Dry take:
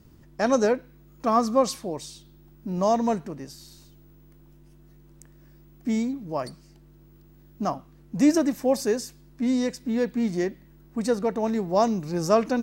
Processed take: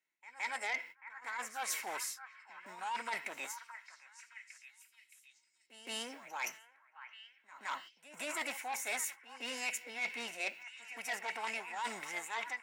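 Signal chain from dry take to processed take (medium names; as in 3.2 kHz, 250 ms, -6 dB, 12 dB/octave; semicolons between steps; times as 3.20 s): fade out at the end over 0.51 s; gate -42 dBFS, range -27 dB; high-pass 940 Hz 12 dB/octave; peaking EQ 1.6 kHz +15 dB 0.7 oct; reverse; compression 16:1, threshold -35 dBFS, peak gain reduction 20.5 dB; reverse; comb of notches 1.2 kHz; pre-echo 168 ms -17.5 dB; formant shift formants +5 st; on a send: repeats whose band climbs or falls 620 ms, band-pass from 1.4 kHz, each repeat 0.7 oct, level -9.5 dB; on the sum: transformer saturation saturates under 2.5 kHz; trim +2.5 dB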